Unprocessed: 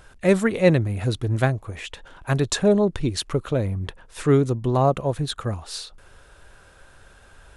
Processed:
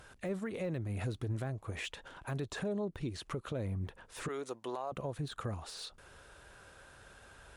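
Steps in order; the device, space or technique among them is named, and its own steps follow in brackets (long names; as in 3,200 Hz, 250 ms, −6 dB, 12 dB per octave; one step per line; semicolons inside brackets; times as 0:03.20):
0:04.28–0:04.92: high-pass filter 650 Hz 12 dB per octave
podcast mastering chain (high-pass filter 79 Hz 6 dB per octave; de-essing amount 90%; downward compressor 4 to 1, threshold −29 dBFS, peak gain reduction 14 dB; brickwall limiter −25 dBFS, peak gain reduction 8 dB; level −3.5 dB; MP3 96 kbit/s 48,000 Hz)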